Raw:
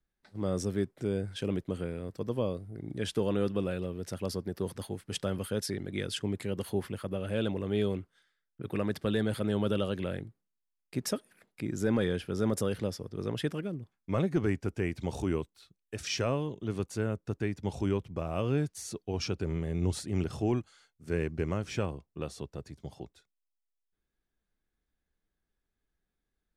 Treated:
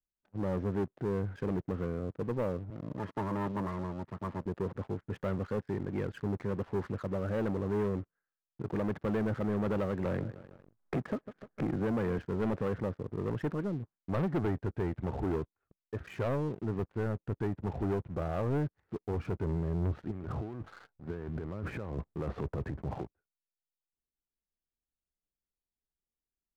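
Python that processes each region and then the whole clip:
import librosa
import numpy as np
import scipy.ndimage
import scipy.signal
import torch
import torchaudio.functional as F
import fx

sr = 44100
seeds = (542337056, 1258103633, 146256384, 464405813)

y = fx.chain(x, sr, fx.lower_of_two(delay_ms=0.97),
    fx.highpass(hz=110.0, slope=12),
    fx.notch_comb(f0_hz=750.0), at=(2.7, 4.46))
y = fx.chain(y, sr, fx.echo_feedback(ms=151, feedback_pct=36, wet_db=-21),
    fx.band_squash(depth_pct=100), at=(10.05, 12.19))
y = fx.chain(y, sr, fx.transient(attack_db=-5, sustain_db=9),
    fx.over_compress(threshold_db=-39.0, ratio=-1.0), at=(20.11, 23.02))
y = fx.env_lowpass(y, sr, base_hz=1200.0, full_db=-25.5)
y = scipy.signal.sosfilt(scipy.signal.butter(4, 1700.0, 'lowpass', fs=sr, output='sos'), y)
y = fx.leveller(y, sr, passes=3)
y = y * 10.0 ** (-8.0 / 20.0)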